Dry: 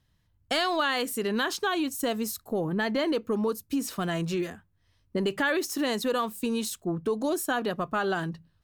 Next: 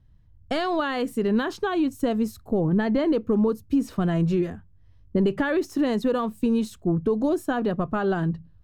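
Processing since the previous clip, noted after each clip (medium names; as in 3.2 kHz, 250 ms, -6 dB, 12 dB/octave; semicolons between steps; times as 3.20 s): tilt EQ -3.5 dB/octave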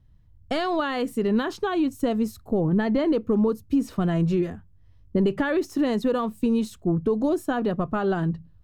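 band-stop 1.6 kHz, Q 24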